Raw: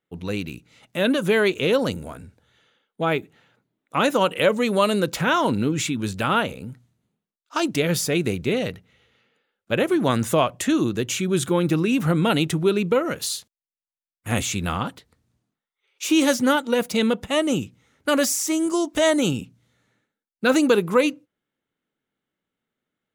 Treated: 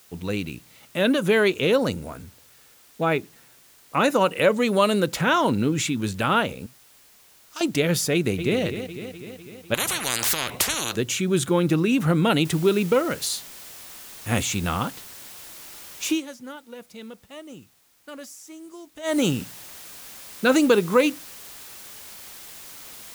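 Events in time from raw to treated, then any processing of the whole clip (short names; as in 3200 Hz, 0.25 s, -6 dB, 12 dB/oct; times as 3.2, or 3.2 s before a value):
1.73–4.51 notch 3200 Hz, Q 6.8
6.66–7.61 pre-emphasis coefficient 0.9
8.13–8.61 echo throw 0.25 s, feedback 65%, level -9.5 dB
9.74–10.96 spectral compressor 10:1
12.45 noise floor step -54 dB -42 dB
16.07–19.18 dip -19.5 dB, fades 0.15 s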